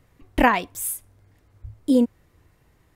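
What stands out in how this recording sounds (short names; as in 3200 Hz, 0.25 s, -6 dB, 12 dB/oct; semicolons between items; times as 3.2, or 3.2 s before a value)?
noise floor -62 dBFS; spectral tilt -4.0 dB/oct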